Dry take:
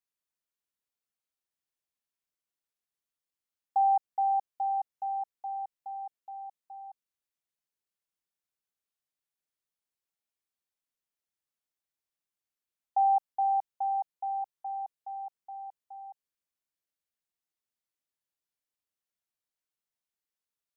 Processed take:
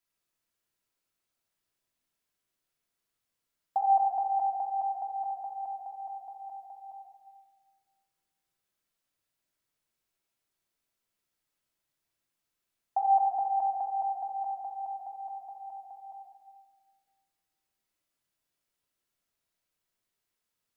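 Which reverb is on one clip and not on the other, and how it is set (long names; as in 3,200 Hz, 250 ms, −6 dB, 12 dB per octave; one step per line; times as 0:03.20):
rectangular room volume 1,600 cubic metres, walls mixed, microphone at 2.9 metres
level +3 dB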